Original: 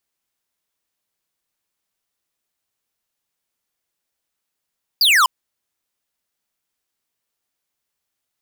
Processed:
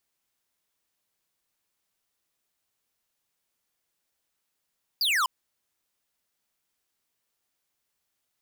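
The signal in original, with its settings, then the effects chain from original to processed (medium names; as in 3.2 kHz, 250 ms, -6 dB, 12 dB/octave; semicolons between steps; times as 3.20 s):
laser zap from 5 kHz, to 960 Hz, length 0.25 s square, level -13 dB
peak limiter -24 dBFS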